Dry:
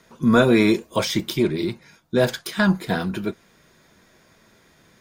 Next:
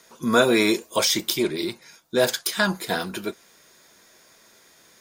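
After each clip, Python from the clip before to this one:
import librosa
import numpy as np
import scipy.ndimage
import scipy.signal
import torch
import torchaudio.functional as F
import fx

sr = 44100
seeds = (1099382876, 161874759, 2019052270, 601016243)

y = fx.bass_treble(x, sr, bass_db=-12, treble_db=9)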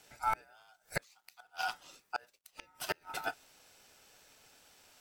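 y = fx.gate_flip(x, sr, shuts_db=-14.0, range_db=-35)
y = fx.quant_dither(y, sr, seeds[0], bits=12, dither='none')
y = y * np.sin(2.0 * np.pi * 1100.0 * np.arange(len(y)) / sr)
y = y * 10.0 ** (-4.5 / 20.0)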